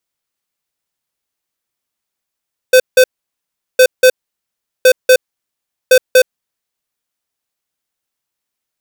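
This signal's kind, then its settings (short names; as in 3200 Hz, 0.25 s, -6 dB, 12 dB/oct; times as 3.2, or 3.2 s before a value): beep pattern square 511 Hz, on 0.07 s, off 0.17 s, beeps 2, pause 0.75 s, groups 4, -5.5 dBFS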